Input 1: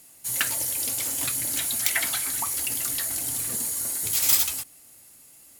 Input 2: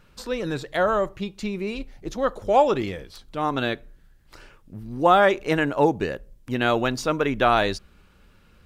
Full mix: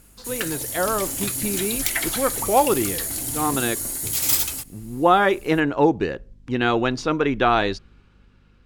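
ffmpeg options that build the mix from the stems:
-filter_complex "[0:a]lowshelf=f=400:g=8.5,volume=-4dB[a];[1:a]lowpass=6k,bandreject=f=600:w=12,aeval=exprs='val(0)+0.00251*(sin(2*PI*50*n/s)+sin(2*PI*2*50*n/s)/2+sin(2*PI*3*50*n/s)/3+sin(2*PI*4*50*n/s)/4+sin(2*PI*5*50*n/s)/5)':c=same,volume=-3.5dB[b];[a][b]amix=inputs=2:normalize=0,equalizer=f=330:w=2.5:g=3.5,dynaudnorm=f=170:g=11:m=5dB"

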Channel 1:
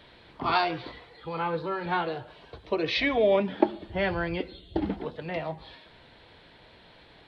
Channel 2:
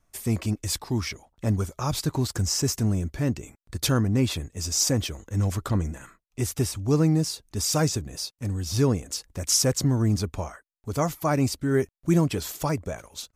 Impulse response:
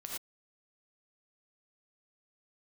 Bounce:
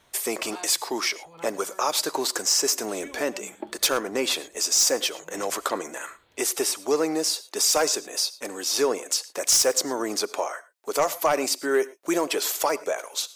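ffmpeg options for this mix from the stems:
-filter_complex "[0:a]volume=-9.5dB[a];[1:a]highpass=f=410:w=0.5412,highpass=f=410:w=1.3066,aeval=exprs='0.355*(cos(1*acos(clip(val(0)/0.355,-1,1)))-cos(1*PI/2))+0.141*(cos(5*acos(clip(val(0)/0.355,-1,1)))-cos(5*PI/2))+0.02*(cos(6*acos(clip(val(0)/0.355,-1,1)))-cos(6*PI/2))+0.0355*(cos(7*acos(clip(val(0)/0.355,-1,1)))-cos(7*PI/2))+0.0126*(cos(8*acos(clip(val(0)/0.355,-1,1)))-cos(8*PI/2))':c=same,volume=3dB,asplit=3[b][c][d];[c]volume=-16dB[e];[d]apad=whole_len=320981[f];[a][f]sidechaincompress=threshold=-31dB:ratio=8:attack=24:release=583[g];[2:a]atrim=start_sample=2205[h];[e][h]afir=irnorm=-1:irlink=0[i];[g][b][i]amix=inputs=3:normalize=0,acompressor=threshold=-27dB:ratio=1.5"

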